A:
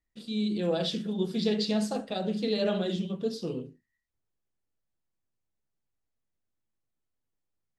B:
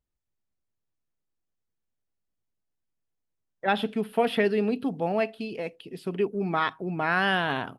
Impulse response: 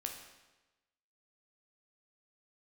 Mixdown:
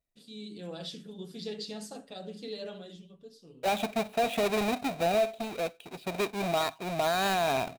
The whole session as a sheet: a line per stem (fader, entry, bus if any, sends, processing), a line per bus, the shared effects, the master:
0:02.48 −11.5 dB → 0:03.26 −21 dB, 0.00 s, no send, high-shelf EQ 6,200 Hz +11 dB; comb filter 7 ms, depth 37%
−9.5 dB, 0.00 s, no send, each half-wave held at its own peak; hollow resonant body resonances 670/2,400/3,800 Hz, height 15 dB, ringing for 25 ms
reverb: not used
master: brickwall limiter −19 dBFS, peak gain reduction 8 dB

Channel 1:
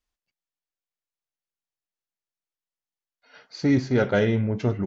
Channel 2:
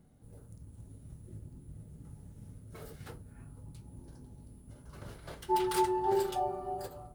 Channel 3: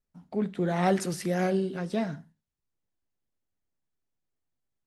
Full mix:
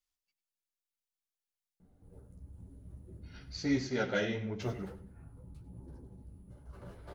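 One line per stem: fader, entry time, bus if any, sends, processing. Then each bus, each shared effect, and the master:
−8.0 dB, 0.00 s, no send, echo send −14 dB, high-shelf EQ 2,400 Hz +10.5 dB
+2.0 dB, 1.80 s, muted 0:03.84–0:04.60, no send, echo send −16 dB, high-shelf EQ 2,100 Hz −11.5 dB
muted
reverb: not used
echo: repeating echo 95 ms, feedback 30%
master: mains-hum notches 50/100/150/200/250 Hz; multi-voice chorus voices 6, 1.4 Hz, delay 13 ms, depth 3 ms

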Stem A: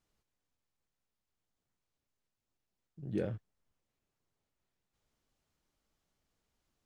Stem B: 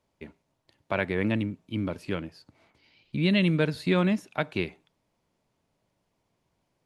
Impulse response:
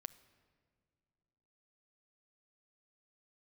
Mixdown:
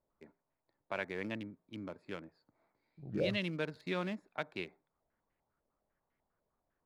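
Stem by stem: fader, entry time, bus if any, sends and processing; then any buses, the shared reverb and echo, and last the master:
−5.0 dB, 0.00 s, no send, low-pass on a step sequencer 10 Hz 590–2,000 Hz
−8.5 dB, 0.00 s, no send, adaptive Wiener filter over 15 samples; high-pass filter 95 Hz; low-shelf EQ 300 Hz −10 dB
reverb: not used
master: no processing

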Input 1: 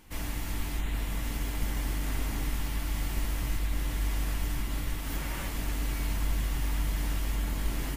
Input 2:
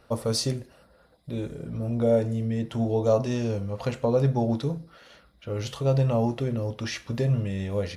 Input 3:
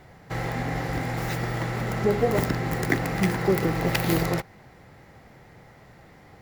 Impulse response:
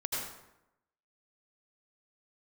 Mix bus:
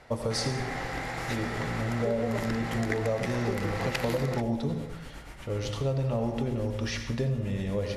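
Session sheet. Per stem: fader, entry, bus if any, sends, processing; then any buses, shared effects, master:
−11.5 dB, 0.00 s, send −8 dB, tremolo along a rectified sine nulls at 8.3 Hz
−3.5 dB, 0.00 s, send −7 dB, no processing
−0.5 dB, 0.00 s, no send, low-shelf EQ 420 Hz −11.5 dB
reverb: on, RT60 0.90 s, pre-delay 73 ms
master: Bessel low-pass filter 8,900 Hz, order 8; downward compressor, threshold −25 dBFS, peak gain reduction 9 dB

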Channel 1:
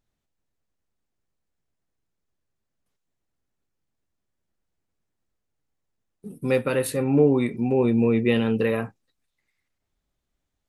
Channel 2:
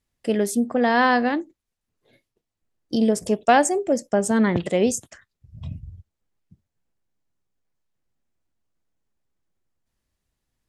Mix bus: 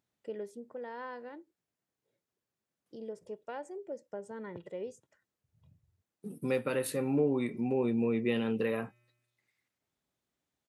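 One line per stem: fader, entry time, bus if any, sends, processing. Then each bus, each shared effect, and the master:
+0.5 dB, 0.00 s, no send, tuned comb filter 120 Hz, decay 1.1 s, harmonics odd, mix 30%
−20.0 dB, 0.00 s, no send, speech leveller 0.5 s; low-pass filter 1,500 Hz 6 dB per octave; comb filter 2.1 ms, depth 56%; automatic ducking −11 dB, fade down 1.30 s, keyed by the first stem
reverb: not used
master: high-pass filter 140 Hz 12 dB per octave; downward compressor 1.5 to 1, threshold −38 dBFS, peak gain reduction 8 dB

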